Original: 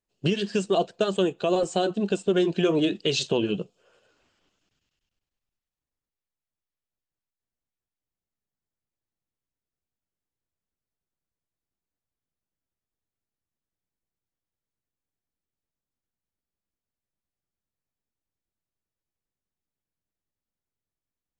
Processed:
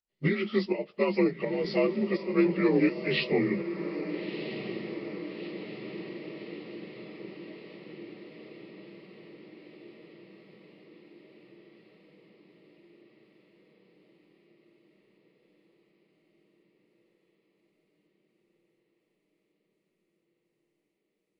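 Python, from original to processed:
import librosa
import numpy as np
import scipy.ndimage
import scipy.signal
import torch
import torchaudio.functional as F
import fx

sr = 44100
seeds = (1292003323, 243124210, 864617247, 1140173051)

y = fx.partial_stretch(x, sr, pct=86)
y = fx.volume_shaper(y, sr, bpm=83, per_beat=1, depth_db=-9, release_ms=213.0, shape='slow start')
y = fx.echo_diffused(y, sr, ms=1308, feedback_pct=64, wet_db=-10.0)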